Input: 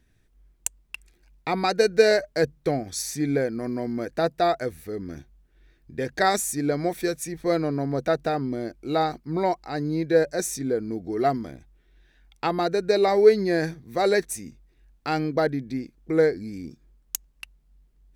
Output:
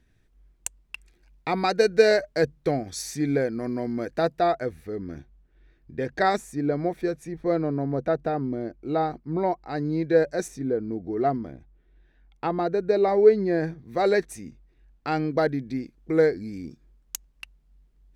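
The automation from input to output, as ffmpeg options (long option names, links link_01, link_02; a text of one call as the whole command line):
ffmpeg -i in.wav -af "asetnsamples=nb_out_samples=441:pad=0,asendcmd='4.39 lowpass f 2300;6.37 lowpass f 1100;9.69 lowpass f 2800;10.48 lowpass f 1100;13.79 lowpass f 2800;15.31 lowpass f 6100',lowpass=frequency=5700:poles=1" out.wav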